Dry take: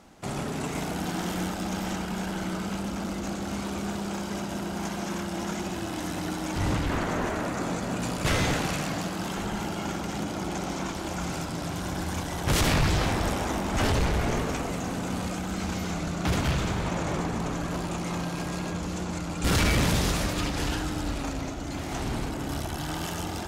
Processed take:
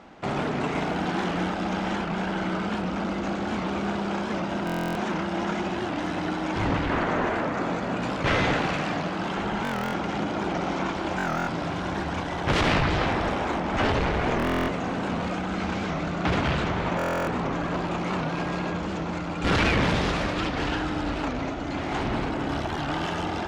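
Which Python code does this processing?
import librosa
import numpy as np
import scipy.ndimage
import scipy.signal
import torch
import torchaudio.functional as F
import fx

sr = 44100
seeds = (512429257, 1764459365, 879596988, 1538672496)

p1 = scipy.signal.sosfilt(scipy.signal.butter(2, 3000.0, 'lowpass', fs=sr, output='sos'), x)
p2 = fx.low_shelf(p1, sr, hz=170.0, db=-9.0)
p3 = fx.rider(p2, sr, range_db=10, speed_s=2.0)
p4 = p2 + F.gain(torch.from_numpy(p3), -1.5).numpy()
p5 = fx.buffer_glitch(p4, sr, at_s=(4.65, 9.63, 11.17, 14.38, 16.97), block=1024, repeats=12)
y = fx.record_warp(p5, sr, rpm=78.0, depth_cents=160.0)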